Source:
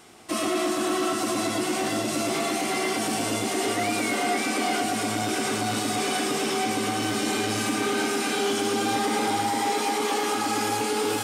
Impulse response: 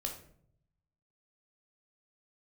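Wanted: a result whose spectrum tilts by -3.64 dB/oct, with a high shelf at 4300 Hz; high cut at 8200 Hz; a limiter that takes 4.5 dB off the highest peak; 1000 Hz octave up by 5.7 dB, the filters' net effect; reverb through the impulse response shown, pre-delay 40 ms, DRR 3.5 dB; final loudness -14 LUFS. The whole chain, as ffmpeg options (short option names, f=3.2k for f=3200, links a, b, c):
-filter_complex "[0:a]lowpass=8.2k,equalizer=f=1k:t=o:g=8.5,highshelf=f=4.3k:g=-6.5,alimiter=limit=-16dB:level=0:latency=1,asplit=2[a][b];[1:a]atrim=start_sample=2205,adelay=40[c];[b][c]afir=irnorm=-1:irlink=0,volume=-4dB[d];[a][d]amix=inputs=2:normalize=0,volume=9.5dB"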